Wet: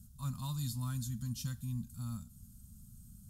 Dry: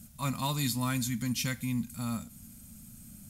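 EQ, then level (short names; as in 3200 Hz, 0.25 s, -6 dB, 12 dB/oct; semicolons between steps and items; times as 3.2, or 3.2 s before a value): passive tone stack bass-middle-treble 6-0-2; high shelf 3000 Hz -9.5 dB; fixed phaser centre 900 Hz, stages 4; +13.5 dB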